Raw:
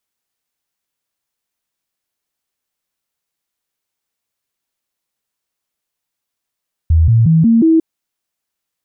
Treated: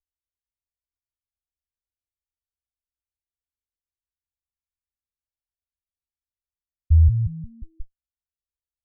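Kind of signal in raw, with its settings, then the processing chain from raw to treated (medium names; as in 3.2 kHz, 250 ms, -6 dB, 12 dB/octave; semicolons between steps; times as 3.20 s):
stepped sine 80.9 Hz up, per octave 2, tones 5, 0.18 s, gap 0.00 s -6.5 dBFS
comb filter that takes the minimum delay 0.39 ms; inverse Chebyshev low-pass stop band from 500 Hz, stop band 80 dB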